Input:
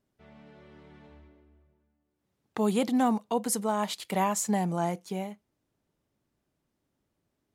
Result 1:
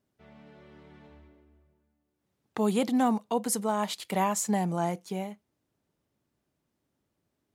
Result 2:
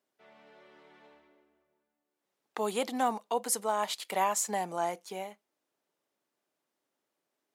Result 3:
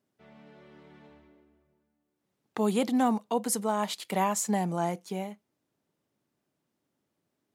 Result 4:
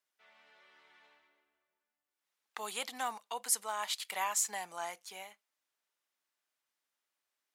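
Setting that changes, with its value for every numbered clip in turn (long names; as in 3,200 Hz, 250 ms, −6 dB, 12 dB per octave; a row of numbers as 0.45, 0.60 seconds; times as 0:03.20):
high-pass filter, corner frequency: 52, 460, 140, 1,300 Hertz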